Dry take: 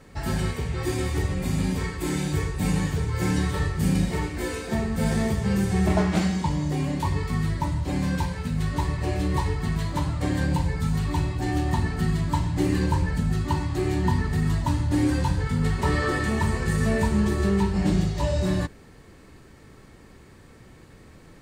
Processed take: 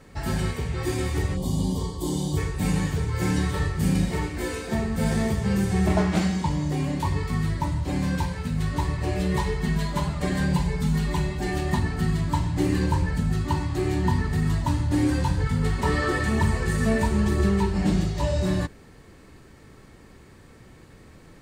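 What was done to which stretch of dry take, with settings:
1.36–2.37 spectral gain 1200–2900 Hz -20 dB
9.16–11.79 comb 4.9 ms, depth 74%
15.4–18.11 phaser 1 Hz, delay 4.6 ms, feedback 27%

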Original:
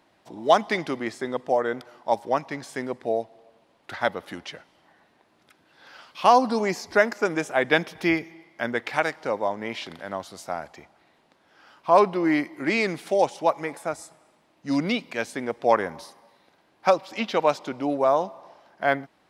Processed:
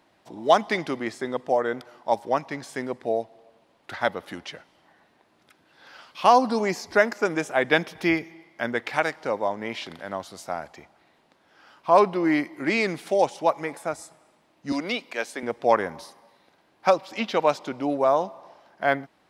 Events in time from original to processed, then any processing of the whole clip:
14.72–15.43 HPF 350 Hz

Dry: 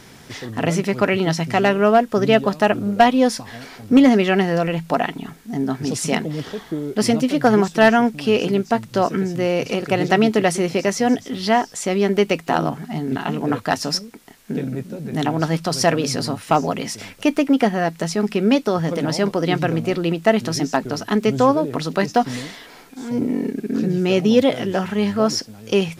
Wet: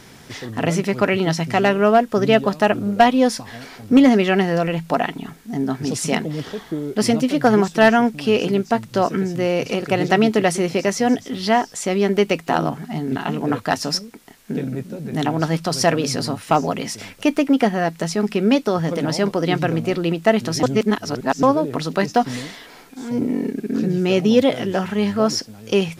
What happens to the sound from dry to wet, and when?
20.63–21.43 reverse

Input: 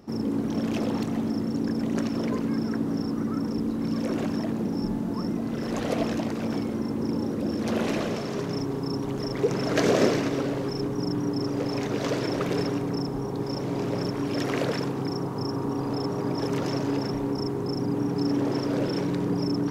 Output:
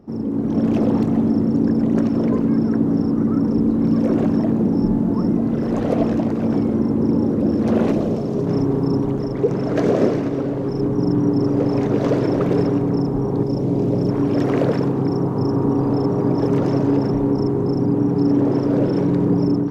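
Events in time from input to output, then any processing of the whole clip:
7.92–8.47 bell 1800 Hz -9.5 dB 1.8 oct
13.43–14.09 bell 1500 Hz -9 dB 1.9 oct
whole clip: tilt shelf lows +8.5 dB, about 1400 Hz; AGC gain up to 9 dB; gain -4.5 dB

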